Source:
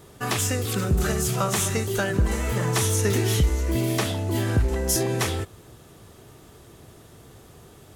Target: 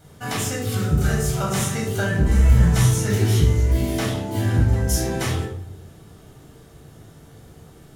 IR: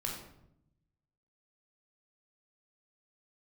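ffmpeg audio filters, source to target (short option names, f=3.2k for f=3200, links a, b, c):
-filter_complex "[0:a]asplit=3[a][b][c];[a]afade=t=out:st=2.26:d=0.02[d];[b]asubboost=boost=6:cutoff=150,afade=t=in:st=2.26:d=0.02,afade=t=out:st=2.79:d=0.02[e];[c]afade=t=in:st=2.79:d=0.02[f];[d][e][f]amix=inputs=3:normalize=0[g];[1:a]atrim=start_sample=2205,asetrate=57330,aresample=44100[h];[g][h]afir=irnorm=-1:irlink=0"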